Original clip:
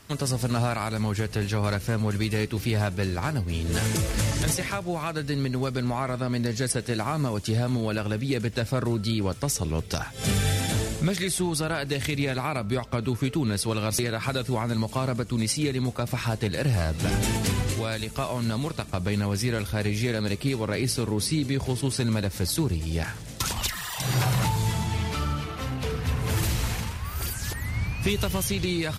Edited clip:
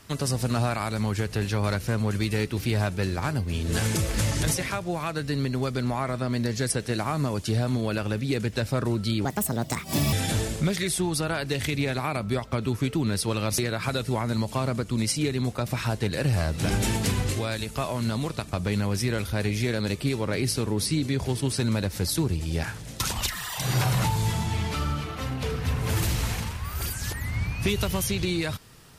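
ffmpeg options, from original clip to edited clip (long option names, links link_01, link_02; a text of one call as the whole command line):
ffmpeg -i in.wav -filter_complex "[0:a]asplit=3[link_01][link_02][link_03];[link_01]atrim=end=9.254[link_04];[link_02]atrim=start=9.25:end=10.53,asetpts=PTS-STARTPTS,asetrate=64386,aresample=44100,atrim=end_sample=38663,asetpts=PTS-STARTPTS[link_05];[link_03]atrim=start=10.526[link_06];[link_04][link_05]acrossfade=duration=0.004:curve1=hsin:curve2=hsin[link_07];[link_07][link_06]acrossfade=duration=0.004:curve1=hsin:curve2=hsin" out.wav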